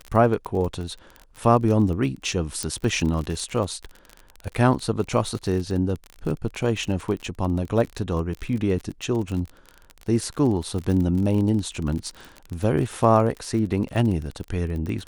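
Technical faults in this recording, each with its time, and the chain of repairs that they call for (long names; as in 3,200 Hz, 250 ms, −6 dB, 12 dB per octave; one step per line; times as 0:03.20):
surface crackle 38 per second −28 dBFS
0:02.63: click −12 dBFS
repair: click removal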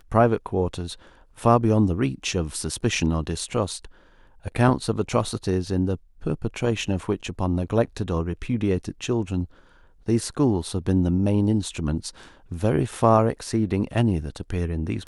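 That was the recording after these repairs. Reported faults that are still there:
none of them is left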